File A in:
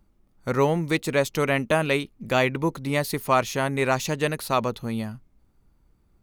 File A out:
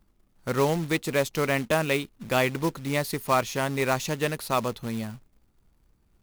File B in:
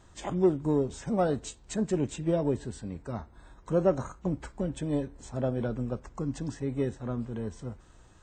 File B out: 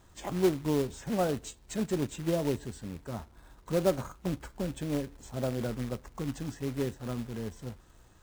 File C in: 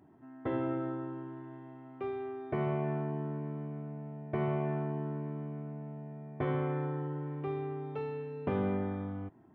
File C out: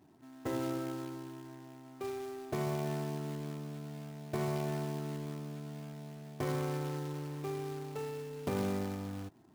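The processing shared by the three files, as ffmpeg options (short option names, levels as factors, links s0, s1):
-af "acrusher=bits=3:mode=log:mix=0:aa=0.000001,volume=0.75"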